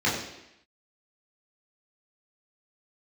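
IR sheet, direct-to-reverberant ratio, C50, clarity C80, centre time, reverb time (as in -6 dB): -7.5 dB, 4.0 dB, 6.5 dB, 47 ms, 0.85 s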